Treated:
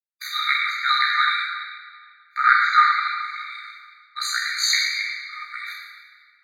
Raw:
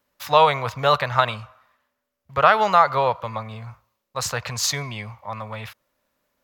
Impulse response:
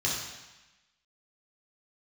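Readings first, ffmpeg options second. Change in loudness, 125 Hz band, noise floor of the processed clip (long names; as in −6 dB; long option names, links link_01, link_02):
0.0 dB, below −40 dB, −57 dBFS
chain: -filter_complex "[0:a]bandreject=frequency=1300:width=11,agate=range=-36dB:threshold=-46dB:ratio=16:detection=peak,aeval=exprs='val(0)+0.00282*(sin(2*PI*60*n/s)+sin(2*PI*2*60*n/s)/2+sin(2*PI*3*60*n/s)/3+sin(2*PI*4*60*n/s)/4+sin(2*PI*5*60*n/s)/5)':channel_layout=same,adynamicequalizer=threshold=0.0316:dfrequency=1900:dqfactor=0.79:tfrequency=1900:tqfactor=0.79:attack=5:release=100:ratio=0.375:range=2.5:mode=boostabove:tftype=bell,asplit=2[link_01][link_02];[link_02]acompressor=threshold=-27dB:ratio=12,volume=2dB[link_03];[link_01][link_03]amix=inputs=2:normalize=0,equalizer=frequency=1000:width=6:gain=-2.5,aeval=exprs='val(0)*sin(2*PI*31*n/s)':channel_layout=same[link_04];[1:a]atrim=start_sample=2205,asetrate=30870,aresample=44100[link_05];[link_04][link_05]afir=irnorm=-1:irlink=0,afftfilt=real='re*eq(mod(floor(b*sr/1024/1200),2),1)':imag='im*eq(mod(floor(b*sr/1024/1200),2),1)':win_size=1024:overlap=0.75,volume=-7.5dB"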